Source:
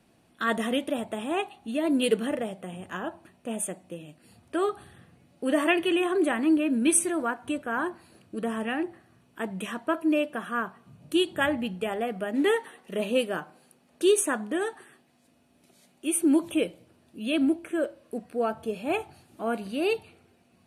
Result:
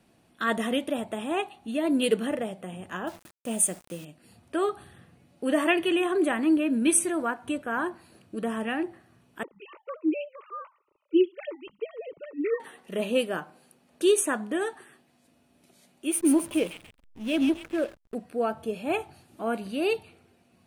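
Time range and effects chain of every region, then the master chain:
0:03.07–0:04.05: low-pass filter 12,000 Hz + bass and treble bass +3 dB, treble +10 dB + bit-depth reduction 8 bits, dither none
0:09.43–0:12.60: three sine waves on the formant tracks + phaser with its sweep stopped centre 1,100 Hz, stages 8
0:16.11–0:18.15: notch filter 8,000 Hz + delay with a high-pass on its return 135 ms, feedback 58%, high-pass 1,900 Hz, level −3 dB + slack as between gear wheels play −33 dBFS
whole clip: no processing

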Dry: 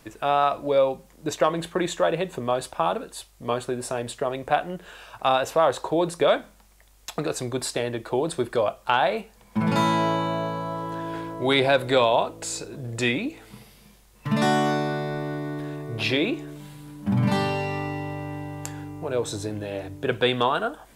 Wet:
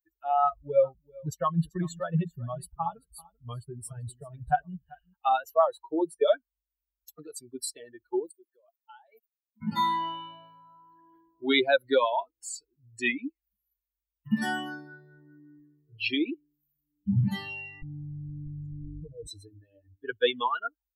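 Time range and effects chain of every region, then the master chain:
0:00.44–0:05.14: low shelf with overshoot 210 Hz +9.5 dB, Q 1.5 + single-tap delay 389 ms −8 dB
0:08.26–0:09.62: output level in coarse steps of 16 dB + high-pass filter 200 Hz + high-shelf EQ 10,000 Hz +11.5 dB
0:17.82–0:19.27: spectral tilt −4.5 dB per octave + output level in coarse steps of 15 dB + comb filter 6.3 ms, depth 87%
whole clip: spectral dynamics exaggerated over time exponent 3; parametric band 6,300 Hz −12 dB 0.23 octaves; notch filter 5,000 Hz, Q 5.4; level +2.5 dB

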